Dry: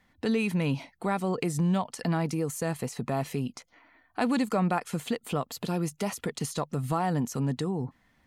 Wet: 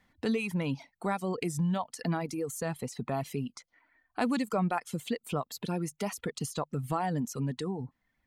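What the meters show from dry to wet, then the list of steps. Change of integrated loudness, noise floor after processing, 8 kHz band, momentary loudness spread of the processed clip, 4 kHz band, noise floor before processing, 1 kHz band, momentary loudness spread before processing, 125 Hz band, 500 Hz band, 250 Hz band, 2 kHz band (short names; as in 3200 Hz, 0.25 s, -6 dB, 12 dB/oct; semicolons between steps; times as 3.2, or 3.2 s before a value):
-3.5 dB, -80 dBFS, -2.5 dB, 6 LU, -3.0 dB, -68 dBFS, -2.5 dB, 7 LU, -4.0 dB, -3.0 dB, -3.5 dB, -2.5 dB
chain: reverb removal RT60 1.6 s; gain -2 dB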